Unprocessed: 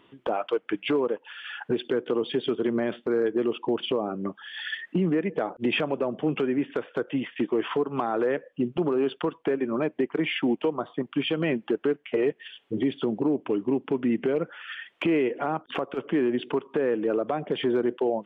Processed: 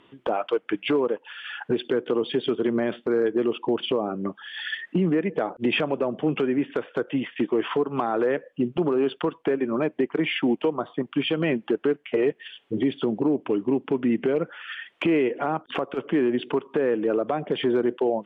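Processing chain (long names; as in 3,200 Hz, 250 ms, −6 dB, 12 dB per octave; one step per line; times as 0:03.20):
low-pass filter 12,000 Hz 12 dB per octave
level +2 dB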